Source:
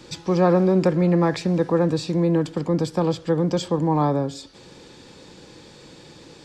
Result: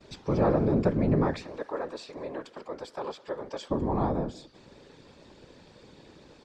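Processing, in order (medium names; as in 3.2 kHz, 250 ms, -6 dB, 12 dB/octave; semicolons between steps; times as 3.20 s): low-pass 2.9 kHz 6 dB/octave; gate with hold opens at -42 dBFS; 1.42–3.70 s: high-pass 670 Hz 12 dB/octave; whisper effect; echo from a far wall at 34 m, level -25 dB; trim -6.5 dB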